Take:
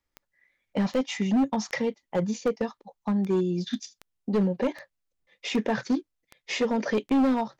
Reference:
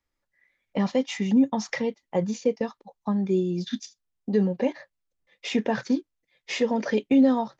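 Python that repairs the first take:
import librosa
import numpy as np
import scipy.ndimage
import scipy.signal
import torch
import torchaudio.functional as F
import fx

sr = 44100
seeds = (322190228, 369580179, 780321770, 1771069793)

y = fx.fix_declip(x, sr, threshold_db=-19.0)
y = fx.fix_declick_ar(y, sr, threshold=10.0)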